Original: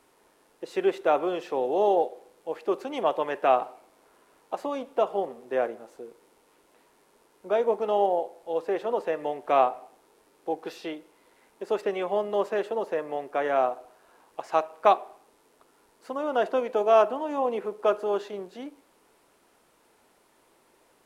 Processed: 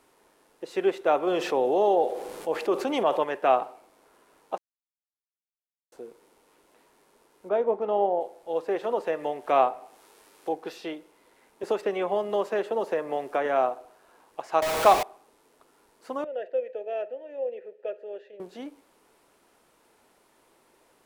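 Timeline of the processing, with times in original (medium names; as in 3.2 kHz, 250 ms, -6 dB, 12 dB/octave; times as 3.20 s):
1.27–3.24 s: level flattener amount 50%
4.58–5.92 s: mute
7.49–8.21 s: low-pass 1.4 kHz 6 dB/octave
8.83–10.58 s: tape noise reduction on one side only encoder only
11.63–13.46 s: three bands compressed up and down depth 70%
14.62–15.03 s: jump at every zero crossing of -21.5 dBFS
16.24–18.40 s: vowel filter e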